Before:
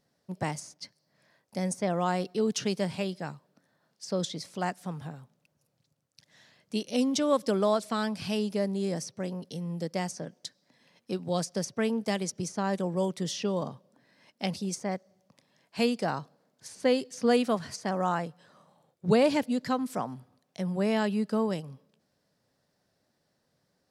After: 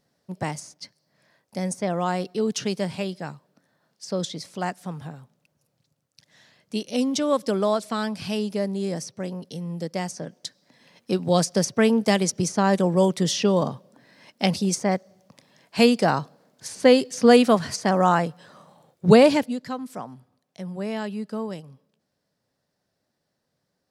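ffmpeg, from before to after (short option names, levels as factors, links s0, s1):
-af "volume=2.99,afade=t=in:st=10.07:d=1.24:silence=0.473151,afade=t=out:st=19.16:d=0.43:silence=0.251189"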